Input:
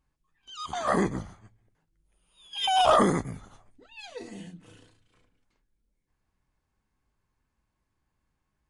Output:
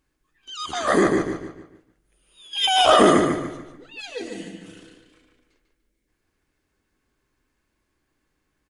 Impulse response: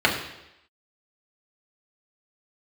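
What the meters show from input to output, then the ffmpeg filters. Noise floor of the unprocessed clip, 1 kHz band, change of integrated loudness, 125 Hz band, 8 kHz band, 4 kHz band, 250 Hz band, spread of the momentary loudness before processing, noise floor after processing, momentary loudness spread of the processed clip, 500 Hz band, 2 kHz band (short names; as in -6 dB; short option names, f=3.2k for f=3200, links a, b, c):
-80 dBFS, +4.5 dB, +6.0 dB, +2.0 dB, +8.5 dB, +9.0 dB, +8.5 dB, 22 LU, -75 dBFS, 20 LU, +8.0 dB, +9.5 dB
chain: -filter_complex "[0:a]firequalizer=gain_entry='entry(190,0);entry(300,11);entry(890,0);entry(1500,8)':delay=0.05:min_phase=1,asplit=2[a][b];[b]adelay=147,lowpass=f=4.7k:p=1,volume=-4dB,asplit=2[c][d];[d]adelay=147,lowpass=f=4.7k:p=1,volume=0.39,asplit=2[e][f];[f]adelay=147,lowpass=f=4.7k:p=1,volume=0.39,asplit=2[g][h];[h]adelay=147,lowpass=f=4.7k:p=1,volume=0.39,asplit=2[i][j];[j]adelay=147,lowpass=f=4.7k:p=1,volume=0.39[k];[c][e][g][i][k]amix=inputs=5:normalize=0[l];[a][l]amix=inputs=2:normalize=0"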